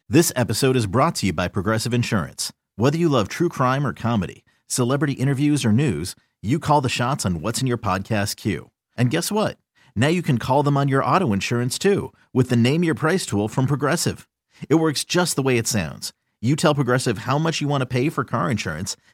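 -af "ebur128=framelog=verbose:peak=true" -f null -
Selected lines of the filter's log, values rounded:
Integrated loudness:
  I:         -21.2 LUFS
  Threshold: -31.5 LUFS
Loudness range:
  LRA:         2.2 LU
  Threshold: -41.5 LUFS
  LRA low:   -22.5 LUFS
  LRA high:  -20.3 LUFS
True peak:
  Peak:       -3.9 dBFS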